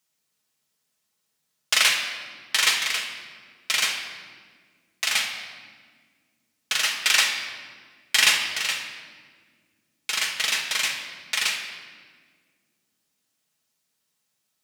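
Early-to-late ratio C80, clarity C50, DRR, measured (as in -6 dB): 6.5 dB, 5.0 dB, -0.5 dB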